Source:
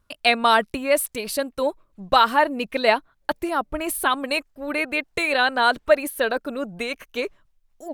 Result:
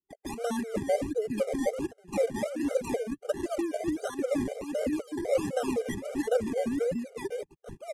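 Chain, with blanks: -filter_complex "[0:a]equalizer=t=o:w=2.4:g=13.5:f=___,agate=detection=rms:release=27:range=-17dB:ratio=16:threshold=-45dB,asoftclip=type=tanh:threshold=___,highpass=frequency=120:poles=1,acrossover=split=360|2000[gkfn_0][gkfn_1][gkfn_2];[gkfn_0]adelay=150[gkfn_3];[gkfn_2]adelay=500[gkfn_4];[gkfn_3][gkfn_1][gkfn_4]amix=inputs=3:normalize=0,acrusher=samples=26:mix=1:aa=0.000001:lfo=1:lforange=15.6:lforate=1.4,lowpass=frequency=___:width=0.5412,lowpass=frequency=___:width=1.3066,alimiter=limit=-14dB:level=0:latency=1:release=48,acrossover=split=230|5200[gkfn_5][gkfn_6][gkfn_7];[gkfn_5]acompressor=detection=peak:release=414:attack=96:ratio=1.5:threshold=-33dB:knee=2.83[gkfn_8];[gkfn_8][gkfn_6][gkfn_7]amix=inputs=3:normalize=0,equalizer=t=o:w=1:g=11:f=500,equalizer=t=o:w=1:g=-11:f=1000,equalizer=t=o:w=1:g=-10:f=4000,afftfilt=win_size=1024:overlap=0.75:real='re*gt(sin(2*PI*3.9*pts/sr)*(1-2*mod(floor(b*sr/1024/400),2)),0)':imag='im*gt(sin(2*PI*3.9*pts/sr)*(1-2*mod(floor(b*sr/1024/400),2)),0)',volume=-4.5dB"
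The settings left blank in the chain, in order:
160, -14.5dB, 11000, 11000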